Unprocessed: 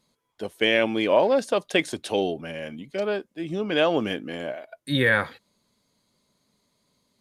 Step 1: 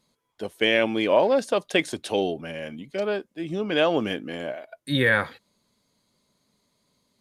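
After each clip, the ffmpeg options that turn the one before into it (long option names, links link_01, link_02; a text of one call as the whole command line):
ffmpeg -i in.wav -af anull out.wav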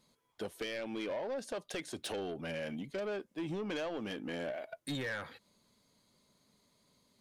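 ffmpeg -i in.wav -af "acompressor=threshold=-30dB:ratio=10,asoftclip=type=tanh:threshold=-31.5dB,volume=-1dB" out.wav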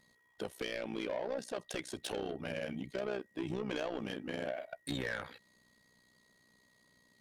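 ffmpeg -i in.wav -af "tremolo=f=62:d=0.824,aeval=exprs='val(0)+0.000224*sin(2*PI*1900*n/s)':channel_layout=same,volume=3.5dB" out.wav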